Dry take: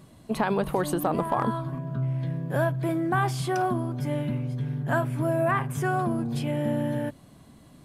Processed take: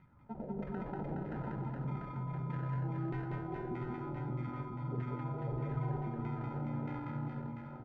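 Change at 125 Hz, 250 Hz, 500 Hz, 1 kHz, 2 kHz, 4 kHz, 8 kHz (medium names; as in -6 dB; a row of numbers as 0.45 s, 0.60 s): -8.5 dB, -11.5 dB, -16.0 dB, -15.5 dB, -19.0 dB, under -20 dB, under -35 dB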